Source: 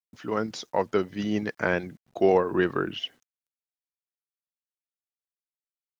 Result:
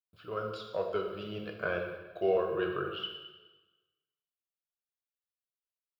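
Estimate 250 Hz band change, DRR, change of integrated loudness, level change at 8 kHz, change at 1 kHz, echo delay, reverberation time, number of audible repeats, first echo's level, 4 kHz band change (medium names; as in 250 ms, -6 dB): -12.0 dB, 2.0 dB, -7.5 dB, no reading, -8.5 dB, no echo, 1.2 s, no echo, no echo, -4.5 dB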